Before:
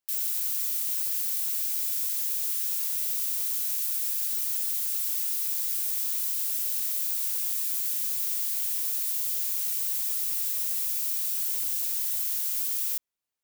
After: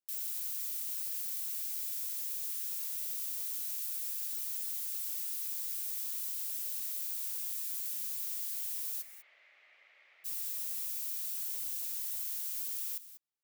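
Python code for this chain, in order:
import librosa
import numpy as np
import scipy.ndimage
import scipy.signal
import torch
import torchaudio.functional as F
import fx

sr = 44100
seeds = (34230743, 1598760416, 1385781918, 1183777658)

p1 = fx.cabinet(x, sr, low_hz=430.0, low_slope=12, high_hz=2200.0, hz=(590.0, 1000.0, 1500.0, 2100.0), db=(8, -6, -4, 8), at=(9.01, 10.24), fade=0.02)
p2 = p1 + fx.echo_single(p1, sr, ms=194, db=-14.0, dry=0)
y = p2 * librosa.db_to_amplitude(-9.0)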